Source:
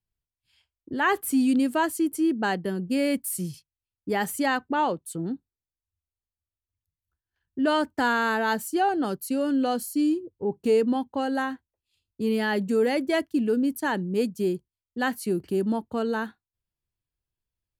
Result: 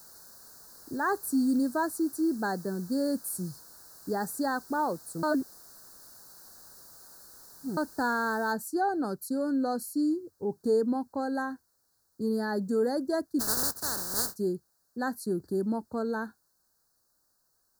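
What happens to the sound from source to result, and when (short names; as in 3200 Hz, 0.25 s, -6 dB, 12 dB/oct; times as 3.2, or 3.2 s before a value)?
5.23–7.77 reverse
8.52 noise floor step -47 dB -68 dB
13.39–14.35 spectral contrast lowered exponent 0.15
whole clip: elliptic band-stop 1600–4300 Hz, stop band 60 dB; gain -4 dB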